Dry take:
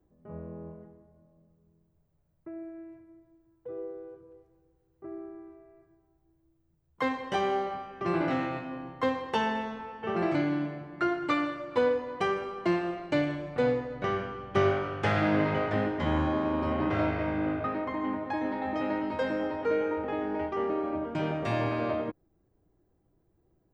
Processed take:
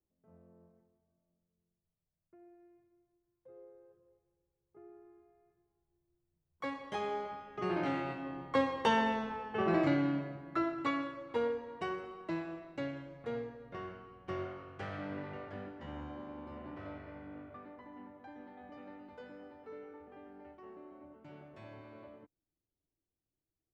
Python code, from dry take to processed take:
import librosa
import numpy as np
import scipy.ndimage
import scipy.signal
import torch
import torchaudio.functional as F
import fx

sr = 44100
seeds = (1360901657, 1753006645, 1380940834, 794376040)

y = fx.doppler_pass(x, sr, speed_mps=19, closest_m=17.0, pass_at_s=9.22)